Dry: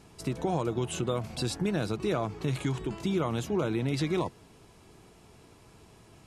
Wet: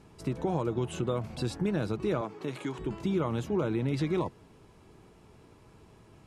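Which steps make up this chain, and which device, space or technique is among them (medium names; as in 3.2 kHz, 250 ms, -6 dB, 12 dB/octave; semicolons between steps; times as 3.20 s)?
2.21–2.79 s: high-pass 260 Hz 12 dB/octave; through cloth (treble shelf 3.3 kHz -13.5 dB); treble shelf 5.1 kHz +5 dB; band-stop 700 Hz, Q 12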